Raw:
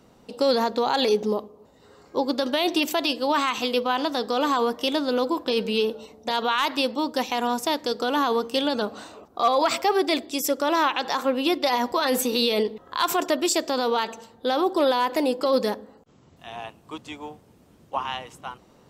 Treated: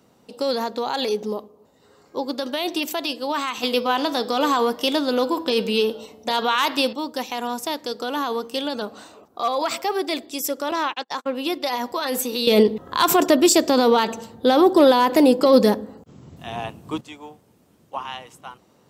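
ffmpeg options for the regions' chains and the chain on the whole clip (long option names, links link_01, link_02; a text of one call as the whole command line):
ffmpeg -i in.wav -filter_complex "[0:a]asettb=1/sr,asplit=3[link_01][link_02][link_03];[link_01]atrim=end=3.634[link_04];[link_02]atrim=start=3.63:end=6.93,asetpts=PTS-STARTPTS,afade=type=in:duration=0.004:curve=qsin,afade=type=out:start_time=3.296:duration=0.004:curve=qsin,bandreject=frequency=163.7:width_type=h:width=4,bandreject=frequency=327.4:width_type=h:width=4,bandreject=frequency=491.1:width_type=h:width=4,bandreject=frequency=654.8:width_type=h:width=4,bandreject=frequency=818.5:width_type=h:width=4,bandreject=frequency=982.2:width_type=h:width=4,bandreject=frequency=1145.9:width_type=h:width=4,bandreject=frequency=1309.6:width_type=h:width=4,bandreject=frequency=1473.3:width_type=h:width=4,bandreject=frequency=1637:width_type=h:width=4,bandreject=frequency=1800.7:width_type=h:width=4,bandreject=frequency=1964.4:width_type=h:width=4,bandreject=frequency=2128.1:width_type=h:width=4,bandreject=frequency=2291.8:width_type=h:width=4,bandreject=frequency=2455.5:width_type=h:width=4,bandreject=frequency=2619.2:width_type=h:width=4,bandreject=frequency=2782.9:width_type=h:width=4,bandreject=frequency=2946.6:width_type=h:width=4,bandreject=frequency=3110.3:width_type=h:width=4,bandreject=frequency=3274:width_type=h:width=4,bandreject=frequency=3437.7:width_type=h:width=4,bandreject=frequency=3601.4:width_type=h:width=4,bandreject=frequency=3765.1:width_type=h:width=4,bandreject=frequency=3928.8:width_type=h:width=4,bandreject=frequency=4092.5:width_type=h:width=4,bandreject=frequency=4256.2:width_type=h:width=4,bandreject=frequency=4419.9:width_type=h:width=4,bandreject=frequency=4583.6:width_type=h:width=4,bandreject=frequency=4747.3:width_type=h:width=4,bandreject=frequency=4911:width_type=h:width=4,bandreject=frequency=5074.7:width_type=h:width=4,bandreject=frequency=5238.4:width_type=h:width=4,bandreject=frequency=5402.1:width_type=h:width=4,acontrast=39[link_05];[link_03]atrim=start=6.926[link_06];[link_04][link_05]acrossfade=duration=0.004:curve1=hsin:curve2=qsin[link_07];[link_07][link_06]acrossfade=duration=0.004:curve1=qsin:curve2=hsin,asettb=1/sr,asplit=3[link_08][link_09][link_10];[link_08]atrim=end=10.714[link_11];[link_09]atrim=start=10.71:end=11.35,asetpts=PTS-STARTPTS,afade=type=in:duration=0.004:curve=qsin,afade=type=out:start_time=0.636:duration=0.004:curve=qsin,lowpass=9700,agate=range=-43dB:threshold=-28dB:ratio=16:release=100:detection=peak[link_12];[link_10]atrim=start=11.346[link_13];[link_11][link_12]acrossfade=duration=0.004:curve1=hsin:curve2=qsin[link_14];[link_14][link_13]acrossfade=duration=0.004:curve1=qsin:curve2=hsin,asettb=1/sr,asplit=3[link_15][link_16][link_17];[link_15]atrim=end=12.474[link_18];[link_16]atrim=start=12.47:end=17.01,asetpts=PTS-STARTPTS,afade=type=in:duration=0.004:curve=qsin,afade=type=out:start_time=4.536:duration=0.004:curve=qsin,acontrast=71,lowshelf=frequency=320:gain=11.5[link_19];[link_17]atrim=start=17.006[link_20];[link_18][link_19]acrossfade=duration=0.004:curve1=hsin:curve2=qsin[link_21];[link_21][link_20]acrossfade=duration=0.004:curve1=qsin:curve2=hsin,highpass=81,highshelf=frequency=8100:gain=6,volume=-2.5dB" out.wav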